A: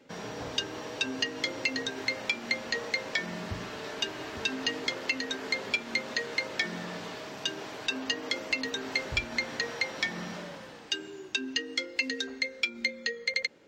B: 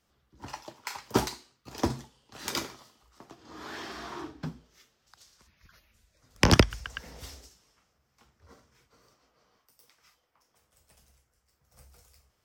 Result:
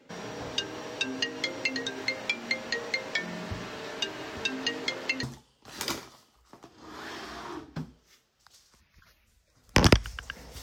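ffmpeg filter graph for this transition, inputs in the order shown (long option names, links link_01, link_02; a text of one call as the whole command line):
ffmpeg -i cue0.wav -i cue1.wav -filter_complex "[0:a]apad=whole_dur=10.62,atrim=end=10.62,atrim=end=5.232[link_01];[1:a]atrim=start=1.898:end=7.29[link_02];[link_01][link_02]acrossfade=duration=0.004:curve1=hsin:curve2=hsin" out.wav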